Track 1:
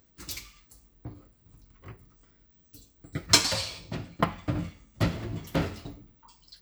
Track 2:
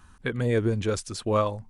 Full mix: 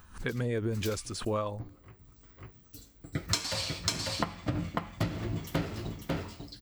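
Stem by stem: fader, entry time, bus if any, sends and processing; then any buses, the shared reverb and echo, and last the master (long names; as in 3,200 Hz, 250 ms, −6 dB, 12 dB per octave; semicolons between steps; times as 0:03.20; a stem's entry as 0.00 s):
+2.0 dB, 0.00 s, no send, echo send −5.5 dB, automatic ducking −18 dB, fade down 0.30 s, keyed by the second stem
−3.0 dB, 0.00 s, no send, no echo send, background raised ahead of every attack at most 150 dB per second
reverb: not used
echo: single-tap delay 546 ms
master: downward compressor 8 to 1, threshold −27 dBFS, peak gain reduction 16 dB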